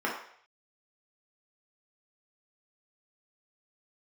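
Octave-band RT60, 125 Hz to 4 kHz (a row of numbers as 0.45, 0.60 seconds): 0.60, 0.40, 0.60, 0.60, 0.65, 0.60 seconds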